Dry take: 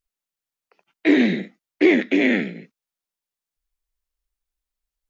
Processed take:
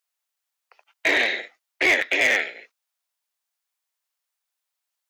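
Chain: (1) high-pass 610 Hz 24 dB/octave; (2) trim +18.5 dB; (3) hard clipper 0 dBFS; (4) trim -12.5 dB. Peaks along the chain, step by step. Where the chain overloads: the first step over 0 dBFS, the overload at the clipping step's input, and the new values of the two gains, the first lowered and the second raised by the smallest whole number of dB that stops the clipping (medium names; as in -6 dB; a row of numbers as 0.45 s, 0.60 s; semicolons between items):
-10.5 dBFS, +8.0 dBFS, 0.0 dBFS, -12.5 dBFS; step 2, 8.0 dB; step 2 +10.5 dB, step 4 -4.5 dB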